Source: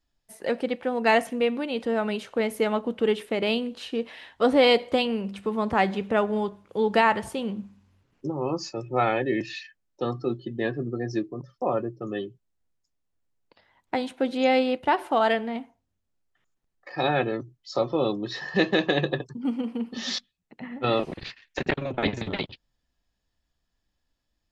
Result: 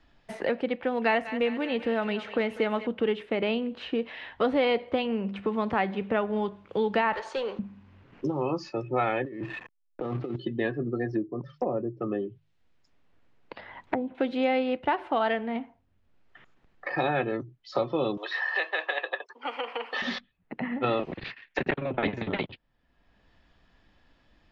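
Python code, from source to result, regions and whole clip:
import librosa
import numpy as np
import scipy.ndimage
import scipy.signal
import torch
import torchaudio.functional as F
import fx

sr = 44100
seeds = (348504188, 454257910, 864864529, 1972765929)

y = fx.chain(x, sr, fx.high_shelf(hz=3600.0, db=7.0),
    fx.echo_thinned(ms=195, feedback_pct=68, hz=850.0, wet_db=-13), at=(0.82, 2.87))
y = fx.chain(y, sr, fx.cabinet(low_hz=460.0, low_slope=24, high_hz=8500.0, hz=(690.0, 2100.0, 3000.0, 4300.0, 6400.0), db=(-6, -4, -4, 9, 9)),
    fx.leveller(passes=2), at=(7.13, 7.59))
y = fx.chain(y, sr, fx.bessel_lowpass(hz=1200.0, order=2),
    fx.backlash(play_db=-44.5),
    fx.over_compress(threshold_db=-36.0, ratio=-1.0), at=(9.24, 10.36))
y = fx.chain(y, sr, fx.env_lowpass_down(base_hz=540.0, full_db=-25.5),
    fx.hum_notches(base_hz=50, count=3), at=(11.05, 14.15))
y = fx.chain(y, sr, fx.bessel_highpass(hz=890.0, order=6),
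    fx.band_squash(depth_pct=70), at=(18.17, 20.02))
y = scipy.signal.sosfilt(scipy.signal.cheby1(2, 1.0, 2500.0, 'lowpass', fs=sr, output='sos'), y)
y = fx.band_squash(y, sr, depth_pct=70)
y = F.gain(torch.from_numpy(y), -1.5).numpy()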